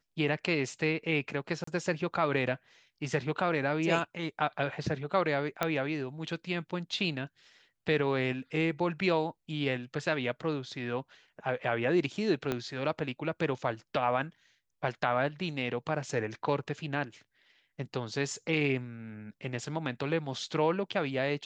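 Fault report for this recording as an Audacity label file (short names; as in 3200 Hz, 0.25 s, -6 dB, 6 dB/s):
1.640000	1.670000	gap 34 ms
5.630000	5.630000	pop -13 dBFS
12.520000	12.520000	pop -17 dBFS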